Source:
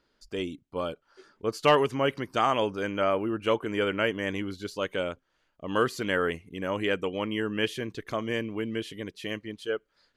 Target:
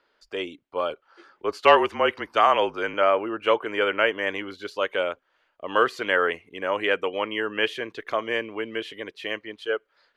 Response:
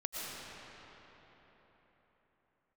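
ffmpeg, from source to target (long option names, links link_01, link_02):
-filter_complex "[0:a]asettb=1/sr,asplit=3[link_01][link_02][link_03];[link_01]atrim=end=0.904[link_04];[link_02]atrim=start=0.9:end=2.94,asetpts=PTS-STARTPTS,afade=type=in:duration=0.004:curve=qsin,afade=type=out:start_time=2.036:duration=0.004:curve=qsin,afreqshift=-34[link_05];[link_03]atrim=start=2.936[link_06];[link_04][link_05]acrossfade=duration=0.004:curve1=hsin:curve2=qsin[link_07];[link_07][link_06]acrossfade=duration=0.004:curve1=qsin:curve2=hsin,acrossover=split=400 3700:gain=0.112 1 0.2[link_08][link_09][link_10];[link_08][link_09][link_10]amix=inputs=3:normalize=0,volume=7dB"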